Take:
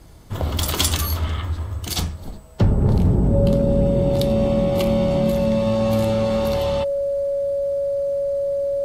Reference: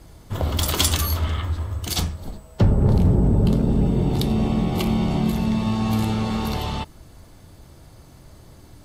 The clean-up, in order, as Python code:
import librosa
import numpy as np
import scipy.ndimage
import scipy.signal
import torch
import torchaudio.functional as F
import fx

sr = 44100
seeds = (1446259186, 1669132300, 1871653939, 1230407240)

y = fx.notch(x, sr, hz=560.0, q=30.0)